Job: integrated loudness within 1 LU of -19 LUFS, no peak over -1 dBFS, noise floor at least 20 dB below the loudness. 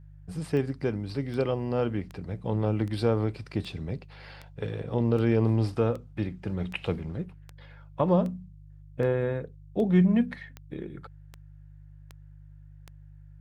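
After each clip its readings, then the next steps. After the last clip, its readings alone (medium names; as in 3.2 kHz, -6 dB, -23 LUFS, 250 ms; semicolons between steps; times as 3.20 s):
clicks found 17; hum 50 Hz; highest harmonic 150 Hz; hum level -48 dBFS; loudness -28.5 LUFS; peak level -11.5 dBFS; loudness target -19.0 LUFS
-> de-click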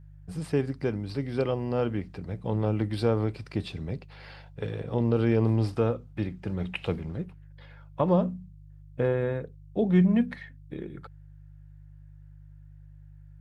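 clicks found 0; hum 50 Hz; highest harmonic 150 Hz; hum level -48 dBFS
-> de-hum 50 Hz, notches 3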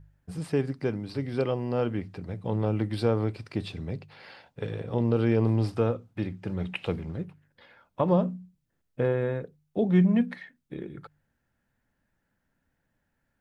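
hum not found; loudness -28.5 LUFS; peak level -11.0 dBFS; loudness target -19.0 LUFS
-> trim +9.5 dB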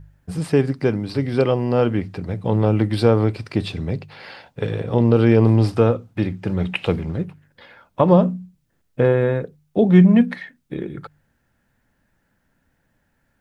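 loudness -19.0 LUFS; peak level -1.5 dBFS; noise floor -68 dBFS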